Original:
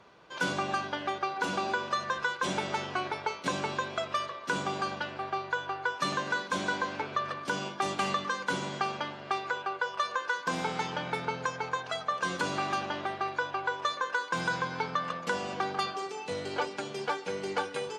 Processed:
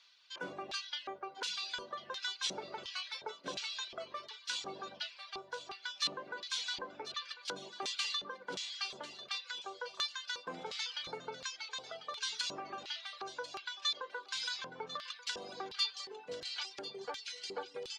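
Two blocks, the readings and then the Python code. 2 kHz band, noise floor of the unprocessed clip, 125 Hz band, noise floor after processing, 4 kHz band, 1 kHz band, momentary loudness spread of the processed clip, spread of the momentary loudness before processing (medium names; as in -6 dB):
-11.5 dB, -44 dBFS, -20.5 dB, -58 dBFS, +1.5 dB, -14.5 dB, 8 LU, 4 LU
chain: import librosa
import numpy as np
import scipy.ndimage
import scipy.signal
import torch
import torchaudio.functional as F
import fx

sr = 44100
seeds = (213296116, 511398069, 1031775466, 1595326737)

y = fx.filter_lfo_bandpass(x, sr, shape='square', hz=1.4, low_hz=450.0, high_hz=4200.0, q=2.0)
y = fx.tone_stack(y, sr, knobs='5-5-5')
y = fx.echo_thinned(y, sr, ms=1045, feedback_pct=49, hz=790.0, wet_db=-13.0)
y = fx.dereverb_blind(y, sr, rt60_s=0.69)
y = F.gain(torch.from_numpy(y), 14.0).numpy()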